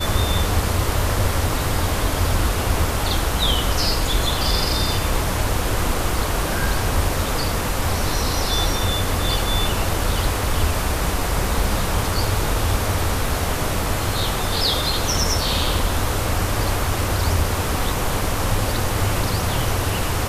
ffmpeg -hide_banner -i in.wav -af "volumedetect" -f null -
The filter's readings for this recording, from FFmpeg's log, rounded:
mean_volume: -19.9 dB
max_volume: -5.9 dB